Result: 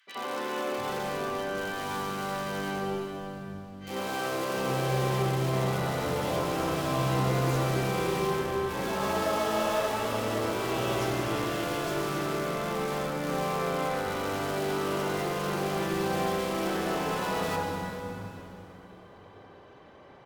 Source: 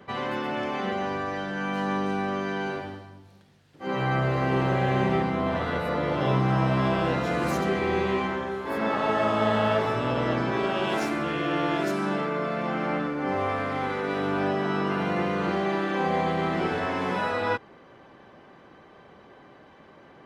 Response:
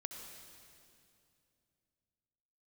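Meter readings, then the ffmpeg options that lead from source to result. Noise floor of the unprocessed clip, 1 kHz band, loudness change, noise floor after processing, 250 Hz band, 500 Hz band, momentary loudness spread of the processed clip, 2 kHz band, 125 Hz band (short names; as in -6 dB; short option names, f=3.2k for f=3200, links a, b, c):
-52 dBFS, -3.5 dB, -3.5 dB, -51 dBFS, -5.0 dB, -2.5 dB, 8 LU, -4.0 dB, -2.5 dB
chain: -filter_complex "[0:a]asplit=2[a][b];[b]aeval=exprs='(mod(15*val(0)+1,2)-1)/15':c=same,volume=-7.5dB[c];[a][c]amix=inputs=2:normalize=0,acrossover=split=220|1800[d][e][f];[e]adelay=70[g];[d]adelay=700[h];[h][g][f]amix=inputs=3:normalize=0[i];[1:a]atrim=start_sample=2205,asetrate=35721,aresample=44100[j];[i][j]afir=irnorm=-1:irlink=0,volume=-2dB"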